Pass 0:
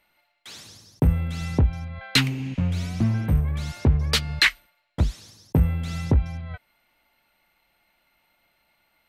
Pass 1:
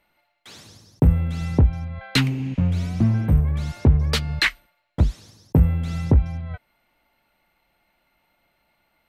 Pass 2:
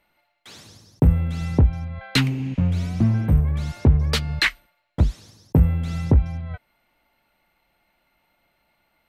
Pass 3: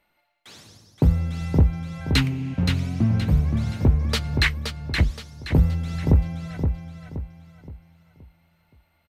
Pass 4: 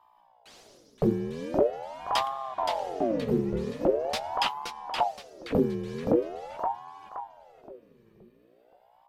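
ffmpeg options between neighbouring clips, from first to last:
-af "tiltshelf=f=1.3k:g=3.5"
-af anull
-af "aecho=1:1:522|1044|1566|2088|2610:0.501|0.19|0.0724|0.0275|0.0105,volume=-2dB"
-af "aeval=exprs='val(0)+0.00224*(sin(2*PI*60*n/s)+sin(2*PI*2*60*n/s)/2+sin(2*PI*3*60*n/s)/3+sin(2*PI*4*60*n/s)/4+sin(2*PI*5*60*n/s)/5)':c=same,aeval=exprs='val(0)*sin(2*PI*610*n/s+610*0.55/0.43*sin(2*PI*0.43*n/s))':c=same,volume=-4.5dB"

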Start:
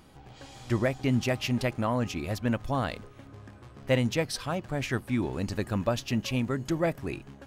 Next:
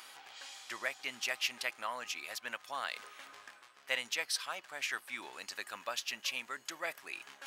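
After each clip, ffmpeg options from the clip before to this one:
-af "highpass=1.4k,areverse,acompressor=mode=upward:threshold=-41dB:ratio=2.5,areverse"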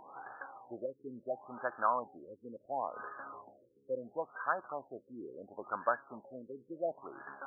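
-af "afftfilt=real='re*lt(b*sr/1024,500*pow(1800/500,0.5+0.5*sin(2*PI*0.72*pts/sr)))':imag='im*lt(b*sr/1024,500*pow(1800/500,0.5+0.5*sin(2*PI*0.72*pts/sr)))':win_size=1024:overlap=0.75,volume=9dB"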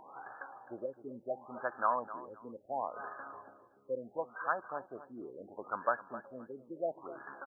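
-af "aecho=1:1:260|520:0.188|0.0433"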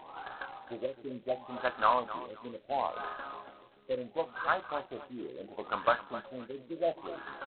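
-filter_complex "[0:a]asplit=2[a][b];[b]adelay=24,volume=-11dB[c];[a][c]amix=inputs=2:normalize=0,volume=4dB" -ar 8000 -c:a adpcm_g726 -b:a 16k

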